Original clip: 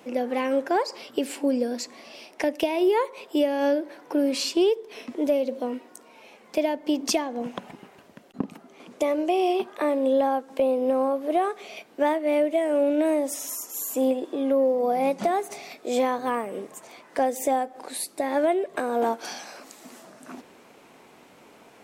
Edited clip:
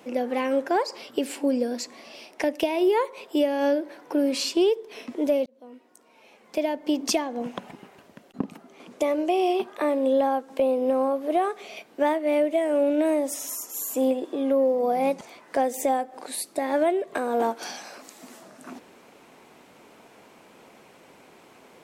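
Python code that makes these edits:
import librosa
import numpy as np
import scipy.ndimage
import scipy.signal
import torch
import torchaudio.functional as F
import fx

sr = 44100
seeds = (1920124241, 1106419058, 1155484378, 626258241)

y = fx.edit(x, sr, fx.fade_in_span(start_s=5.46, length_s=1.4),
    fx.cut(start_s=15.21, length_s=1.62), tone=tone)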